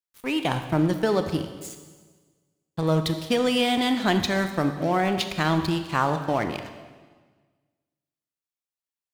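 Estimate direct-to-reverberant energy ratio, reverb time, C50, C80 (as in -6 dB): 7.5 dB, 1.4 s, 9.0 dB, 10.0 dB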